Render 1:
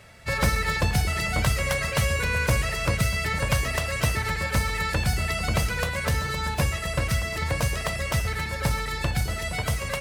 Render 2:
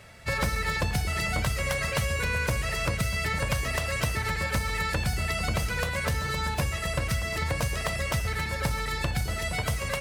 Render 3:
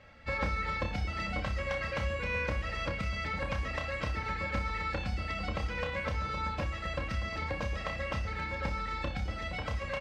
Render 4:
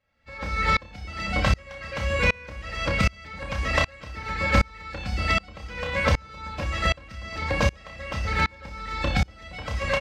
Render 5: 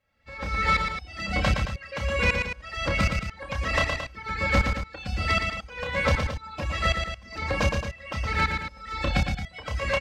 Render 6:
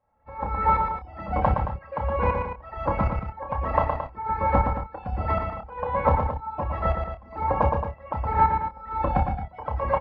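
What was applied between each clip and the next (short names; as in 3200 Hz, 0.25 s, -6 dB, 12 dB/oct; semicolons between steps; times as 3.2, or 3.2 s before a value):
compressor 4:1, threshold -24 dBFS, peak gain reduction 6.5 dB
air absorption 190 m; comb 3.7 ms, depth 56%; flutter echo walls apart 5.2 m, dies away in 0.25 s; gain -6 dB
high shelf 4100 Hz +6.5 dB; AGC gain up to 8 dB; dB-ramp tremolo swelling 1.3 Hz, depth 30 dB; gain +7.5 dB
reverb removal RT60 1.9 s; soft clip -13.5 dBFS, distortion -19 dB; on a send: loudspeakers at several distances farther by 40 m -5 dB, 76 m -10 dB
synth low-pass 910 Hz, resonance Q 4.9; doubler 28 ms -9 dB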